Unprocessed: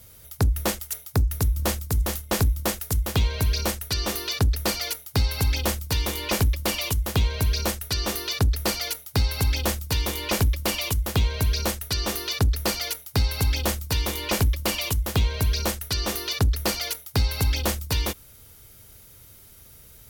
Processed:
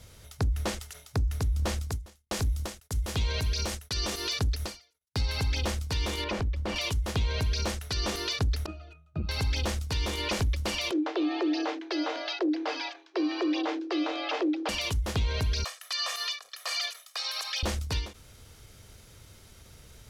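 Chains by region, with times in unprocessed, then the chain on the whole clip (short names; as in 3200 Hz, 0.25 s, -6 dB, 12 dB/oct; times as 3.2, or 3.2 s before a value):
1.91–5.21 gate -38 dBFS, range -41 dB + high shelf 4900 Hz +7 dB
6.24–6.76 LPF 1400 Hz 6 dB/oct + compressor 12:1, threshold -26 dBFS
8.66–9.29 notch 5200 Hz, Q 7.3 + octave resonator D#, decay 0.16 s + core saturation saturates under 180 Hz
10.91–14.69 frequency shift +250 Hz + BPF 320–6400 Hz + air absorption 210 m
15.64–17.63 HPF 800 Hz 24 dB/oct + comb 1.7 ms, depth 81%
whole clip: limiter -22.5 dBFS; LPF 7100 Hz 12 dB/oct; ending taper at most 160 dB/s; gain +1.5 dB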